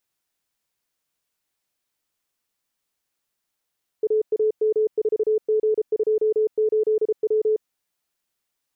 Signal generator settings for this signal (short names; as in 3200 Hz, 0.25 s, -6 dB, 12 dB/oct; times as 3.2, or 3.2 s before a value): Morse "AAM4G28W" 33 wpm 432 Hz -16.5 dBFS